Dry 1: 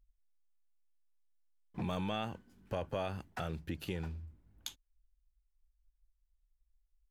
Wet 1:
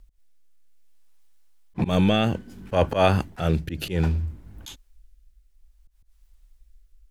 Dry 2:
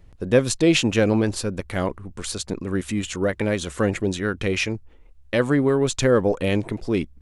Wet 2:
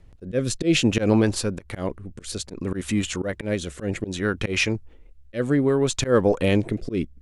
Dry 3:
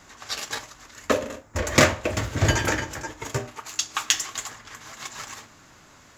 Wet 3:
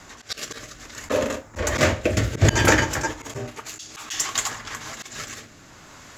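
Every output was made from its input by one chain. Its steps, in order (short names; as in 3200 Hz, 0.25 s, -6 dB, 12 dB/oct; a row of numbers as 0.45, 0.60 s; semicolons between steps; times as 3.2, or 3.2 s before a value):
auto swell 0.112 s; rotary speaker horn 0.6 Hz; match loudness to -24 LUFS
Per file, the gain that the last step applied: +21.5, +2.0, +8.5 dB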